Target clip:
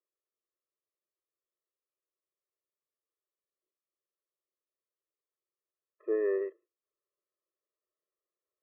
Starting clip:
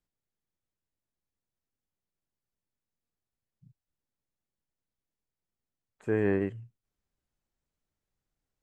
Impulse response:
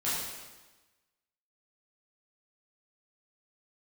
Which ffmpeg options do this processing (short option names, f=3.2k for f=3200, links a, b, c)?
-af "lowpass=f=1.6k:w=0.5412,lowpass=f=1.6k:w=1.3066,afftfilt=real='re*eq(mod(floor(b*sr/1024/340),2),1)':imag='im*eq(mod(floor(b*sr/1024/340),2),1)':win_size=1024:overlap=0.75"